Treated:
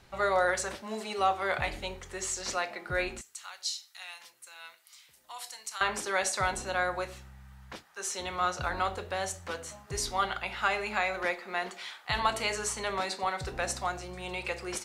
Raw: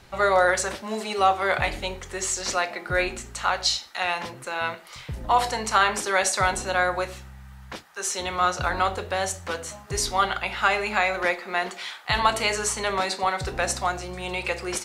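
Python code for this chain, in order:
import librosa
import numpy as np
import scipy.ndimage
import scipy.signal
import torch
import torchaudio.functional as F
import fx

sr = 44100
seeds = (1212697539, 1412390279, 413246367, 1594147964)

y = fx.differentiator(x, sr, at=(3.21, 5.81))
y = F.gain(torch.from_numpy(y), -7.0).numpy()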